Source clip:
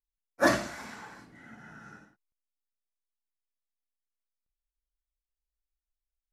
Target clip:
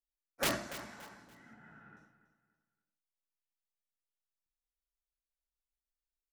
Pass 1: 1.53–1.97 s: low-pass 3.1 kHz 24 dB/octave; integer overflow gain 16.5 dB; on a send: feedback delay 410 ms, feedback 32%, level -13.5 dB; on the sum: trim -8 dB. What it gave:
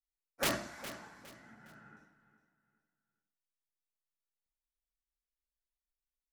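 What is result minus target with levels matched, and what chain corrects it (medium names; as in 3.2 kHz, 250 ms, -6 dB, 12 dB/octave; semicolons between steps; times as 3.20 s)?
echo 124 ms late
1.53–1.97 s: low-pass 3.1 kHz 24 dB/octave; integer overflow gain 16.5 dB; on a send: feedback delay 286 ms, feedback 32%, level -13.5 dB; on the sum: trim -8 dB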